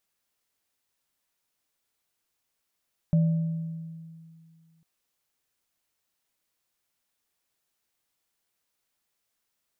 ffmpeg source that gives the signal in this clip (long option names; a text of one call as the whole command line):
ffmpeg -f lavfi -i "aevalsrc='0.141*pow(10,-3*t/2.28)*sin(2*PI*163*t)+0.02*pow(10,-3*t/1.21)*sin(2*PI*587*t)':duration=1.7:sample_rate=44100" out.wav